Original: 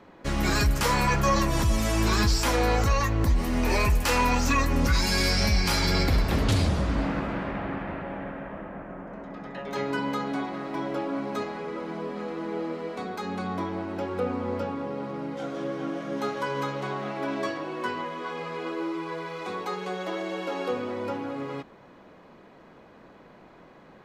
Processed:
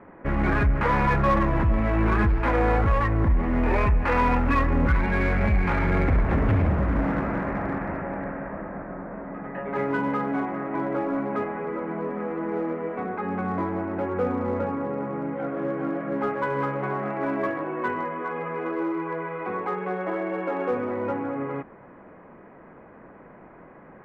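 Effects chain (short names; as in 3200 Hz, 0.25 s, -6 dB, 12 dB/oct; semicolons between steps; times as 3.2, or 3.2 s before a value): steep low-pass 2200 Hz 36 dB/oct; in parallel at -5 dB: overloaded stage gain 26 dB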